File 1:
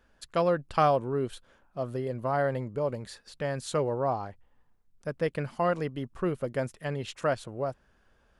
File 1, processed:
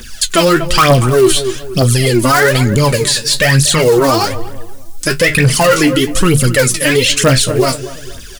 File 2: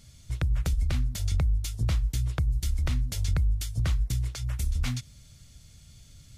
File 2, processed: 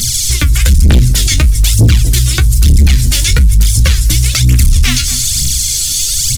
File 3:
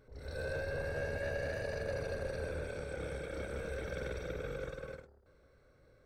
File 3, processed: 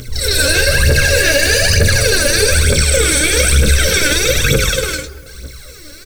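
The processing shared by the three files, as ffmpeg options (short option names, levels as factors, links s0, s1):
-filter_complex "[0:a]acrossover=split=2700[s0][s1];[s1]acompressor=threshold=0.00158:ratio=4:attack=1:release=60[s2];[s0][s2]amix=inputs=2:normalize=0,bandreject=f=50:t=h:w=6,bandreject=f=100:t=h:w=6,bandreject=f=150:t=h:w=6,aphaser=in_gain=1:out_gain=1:delay=3.6:decay=0.78:speed=1.1:type=triangular,bass=f=250:g=-4,treble=f=4000:g=10,acrossover=split=2100[s3][s4];[s4]acontrast=72[s5];[s3][s5]amix=inputs=2:normalize=0,flanger=delay=8.4:depth=7.8:regen=46:speed=0.46:shape=sinusoidal,equalizer=f=750:w=0.8:g=-14.5,asoftclip=type=tanh:threshold=0.0422,asplit=2[s6][s7];[s7]adelay=238,lowpass=f=1300:p=1,volume=0.158,asplit=2[s8][s9];[s9]adelay=238,lowpass=f=1300:p=1,volume=0.39,asplit=2[s10][s11];[s11]adelay=238,lowpass=f=1300:p=1,volume=0.39[s12];[s6][s8][s10][s12]amix=inputs=4:normalize=0,alimiter=level_in=53.1:limit=0.891:release=50:level=0:latency=1,volume=0.841"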